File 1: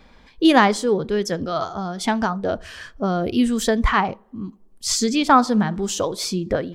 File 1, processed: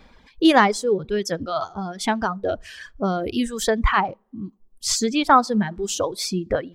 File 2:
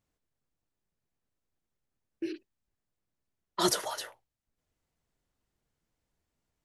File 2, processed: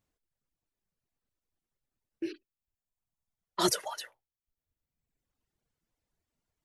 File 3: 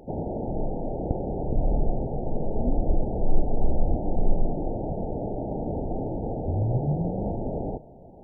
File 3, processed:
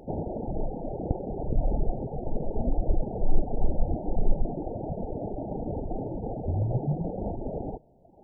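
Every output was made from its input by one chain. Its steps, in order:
reverb reduction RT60 1.3 s
dynamic equaliser 250 Hz, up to −5 dB, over −38 dBFS, Q 6.2

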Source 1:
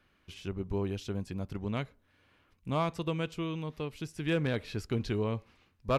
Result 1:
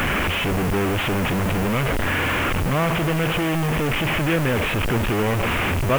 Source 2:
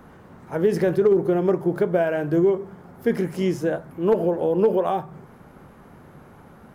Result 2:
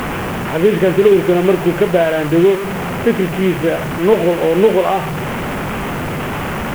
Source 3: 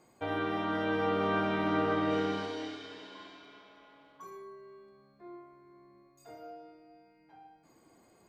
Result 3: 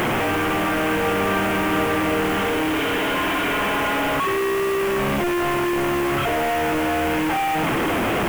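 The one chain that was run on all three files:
linear delta modulator 16 kbit/s, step −22.5 dBFS
background noise white −46 dBFS
level +7.5 dB

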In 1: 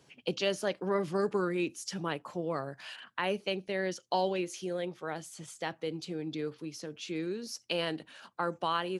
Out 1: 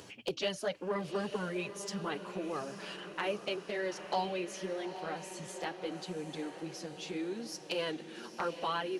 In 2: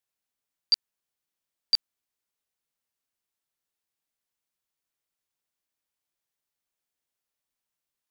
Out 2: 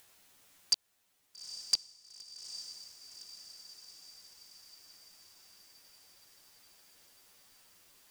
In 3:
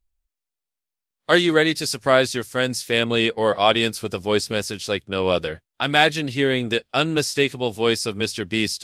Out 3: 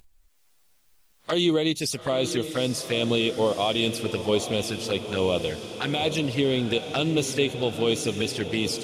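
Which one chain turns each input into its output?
brickwall limiter −11.5 dBFS
flanger swept by the level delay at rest 10.6 ms, full sweep at −21 dBFS
upward compression, threshold −41 dBFS
on a send: feedback delay with all-pass diffusion 851 ms, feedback 62%, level −10.5 dB

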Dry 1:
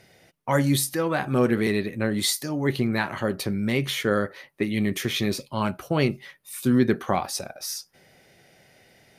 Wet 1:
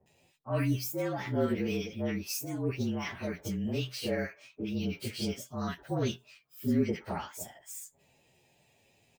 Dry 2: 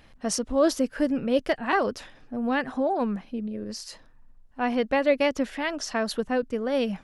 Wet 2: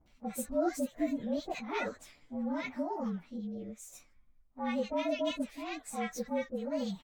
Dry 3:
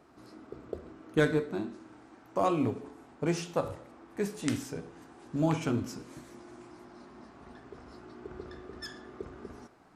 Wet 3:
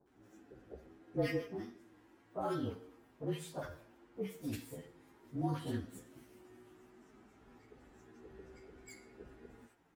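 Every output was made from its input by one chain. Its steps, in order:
partials spread apart or drawn together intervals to 112%
multiband delay without the direct sound lows, highs 60 ms, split 1,100 Hz
level −6.5 dB

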